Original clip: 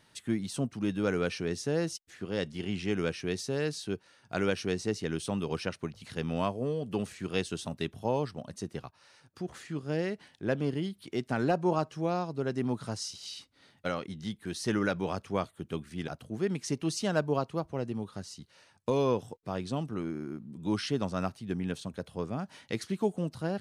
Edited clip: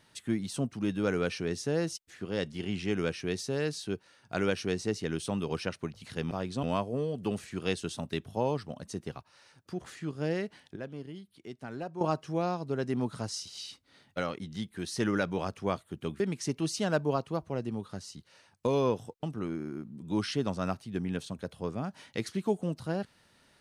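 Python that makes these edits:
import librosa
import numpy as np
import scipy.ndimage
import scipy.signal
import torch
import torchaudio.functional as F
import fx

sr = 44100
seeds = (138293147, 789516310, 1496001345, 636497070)

y = fx.edit(x, sr, fx.clip_gain(start_s=10.44, length_s=1.25, db=-11.0),
    fx.cut(start_s=15.88, length_s=0.55),
    fx.move(start_s=19.46, length_s=0.32, to_s=6.31), tone=tone)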